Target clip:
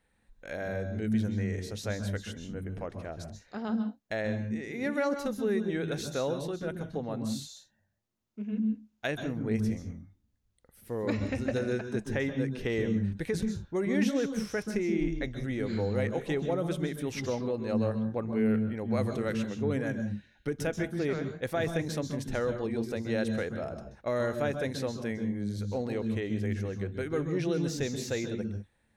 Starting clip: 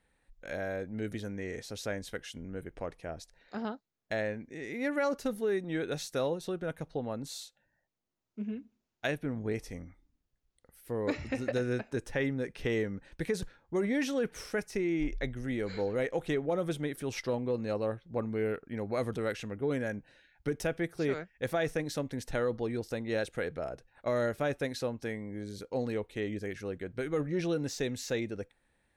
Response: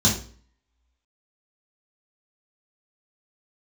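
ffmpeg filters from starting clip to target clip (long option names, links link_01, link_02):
-filter_complex "[0:a]asplit=2[link_01][link_02];[1:a]atrim=start_sample=2205,afade=type=out:start_time=0.14:duration=0.01,atrim=end_sample=6615,adelay=128[link_03];[link_02][link_03]afir=irnorm=-1:irlink=0,volume=-23dB[link_04];[link_01][link_04]amix=inputs=2:normalize=0"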